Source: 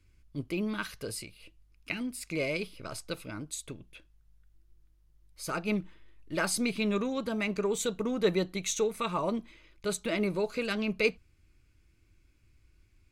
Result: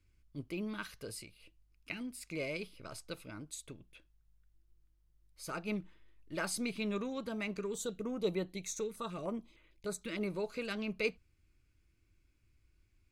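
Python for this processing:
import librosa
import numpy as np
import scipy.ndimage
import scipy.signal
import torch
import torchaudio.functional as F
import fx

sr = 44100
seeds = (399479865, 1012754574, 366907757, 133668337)

y = fx.filter_held_notch(x, sr, hz=6.6, low_hz=720.0, high_hz=5400.0, at=(7.59, 10.21))
y = y * 10.0 ** (-7.0 / 20.0)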